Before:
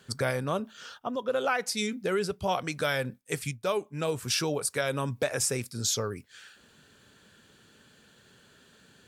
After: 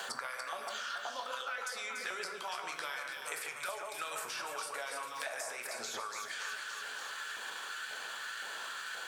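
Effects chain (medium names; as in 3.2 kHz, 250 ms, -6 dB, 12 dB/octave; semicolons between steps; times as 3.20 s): transient shaper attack -7 dB, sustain +8 dB; LFO high-pass saw up 1.9 Hz 720–1600 Hz; compression, threshold -40 dBFS, peak gain reduction 18.5 dB; echo whose repeats swap between lows and highs 143 ms, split 2.5 kHz, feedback 69%, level -4 dB; on a send at -5 dB: reverberation RT60 0.60 s, pre-delay 6 ms; on the sum: three bands compressed up and down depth 100%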